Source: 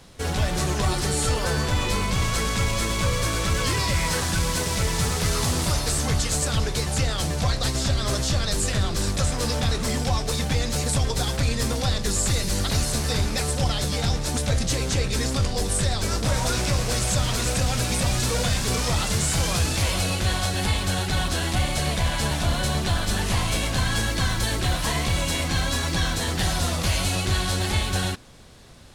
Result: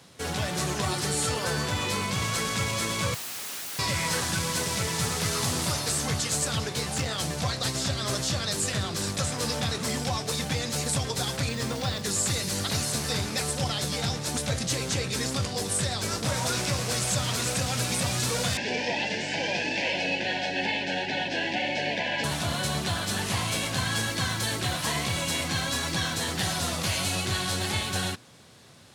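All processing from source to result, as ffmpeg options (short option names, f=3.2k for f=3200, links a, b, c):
-filter_complex "[0:a]asettb=1/sr,asplit=3[a][b][c];[a]atrim=end=3.144[d];[b]atrim=start=3.14:end=3.79,asetpts=PTS-STARTPTS,afade=t=in:d=0.004:c=qsin,afade=t=out:st=0.646:d=0.004:c=qsin,highpass=230,lowpass=6.5k,aeval=exprs='(mod(29.9*val(0)+1,2)-1)/29.9':c=same[e];[c]atrim=start=3.786[f];[d][e]acrossfade=d=0.004:c1=hsin:c2=qsin[g];[g][f]acrossfade=d=0.004:c1=qsin:c2=hsin,asettb=1/sr,asplit=3[h][i][j];[h]atrim=end=6.694[k];[i]atrim=start=6.69:end=7.16,asetpts=PTS-STARTPTS,afade=t=in:d=0.004:c=qsin,afade=t=out:st=0.466:d=0.004:c=qsin,highshelf=f=4.5k:g=-2.5,asplit=2[l][m];[m]adelay=23,volume=-7dB[n];[l][n]amix=inputs=2:normalize=0,atrim=end_sample=20727,asoftclip=type=hard:threshold=-18dB[o];[j]atrim=start=7.156[p];[k][o]acrossfade=d=0.004:c1=hsin:c2=qsin[q];[q][p]acrossfade=d=0.004:c1=qsin:c2=hsin,asettb=1/sr,asplit=3[r][s][t];[r]atrim=end=11.494[u];[s]atrim=start=11.49:end=12.02,asetpts=PTS-STARTPTS,afade=t=in:d=0.004:c=qsin,afade=t=out:st=0.526:d=0.004:c=qsin,highshelf=f=7.2k:g=-10.5,acrusher=bits=6:mix=0:aa=0.5[v];[t]atrim=start=12.016[w];[u][v]acrossfade=d=0.004:c1=hsin:c2=qsin[x];[x][w]acrossfade=d=0.004:c1=qsin:c2=hsin,asettb=1/sr,asplit=3[y][z][aa];[y]atrim=end=18.574[ab];[z]atrim=start=18.57:end=22.24,asetpts=PTS-STARTPTS,afade=t=in:d=0.004:c=qsin,afade=t=out:st=3.666:d=0.004:c=qsin,asuperstop=centerf=1200:order=8:qfactor=1.8,highpass=f=210:w=0.5412,highpass=f=210:w=1.3066,equalizer=f=280:t=q:w=4:g=5,equalizer=f=560:t=q:w=4:g=5,equalizer=f=1k:t=q:w=4:g=9,equalizer=f=1.7k:t=q:w=4:g=6,equalizer=f=2.6k:t=q:w=4:g=7,equalizer=f=3.9k:t=q:w=4:g=-6,lowpass=f=4.8k:w=0.5412,lowpass=f=4.8k:w=1.3066,aeval=exprs='val(0)+0.0158*(sin(2*PI*50*n/s)+sin(2*PI*2*50*n/s)/2+sin(2*PI*3*50*n/s)/3+sin(2*PI*4*50*n/s)/4+sin(2*PI*5*50*n/s)/5)':c=same[ac];[aa]atrim=start=22.236[ad];[ab][ac]acrossfade=d=0.004:c1=hsin:c2=qsin[ae];[ae][ad]acrossfade=d=0.004:c1=qsin:c2=hsin,highpass=f=100:w=0.5412,highpass=f=100:w=1.3066,equalizer=f=300:w=0.34:g=-2.5,volume=-1.5dB"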